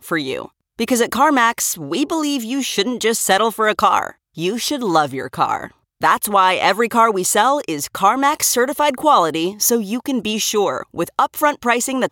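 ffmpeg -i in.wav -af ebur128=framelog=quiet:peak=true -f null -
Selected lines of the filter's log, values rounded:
Integrated loudness:
  I:         -17.2 LUFS
  Threshold: -27.3 LUFS
Loudness range:
  LRA:         2.6 LU
  Threshold: -37.1 LUFS
  LRA low:   -18.2 LUFS
  LRA high:  -15.6 LUFS
True peak:
  Peak:       -2.1 dBFS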